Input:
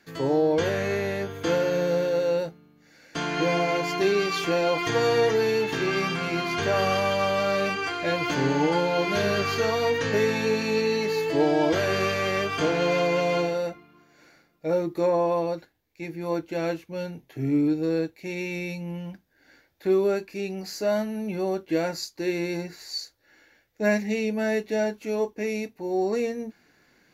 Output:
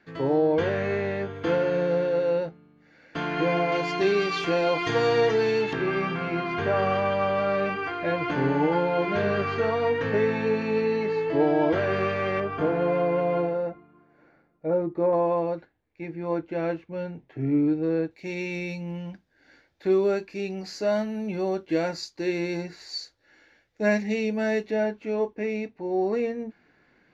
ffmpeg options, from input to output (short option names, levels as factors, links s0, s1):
-af "asetnsamples=n=441:p=0,asendcmd='3.72 lowpass f 4500;5.73 lowpass f 2100;12.4 lowpass f 1300;15.13 lowpass f 2200;18.11 lowpass f 5500;24.71 lowpass f 2800',lowpass=2700"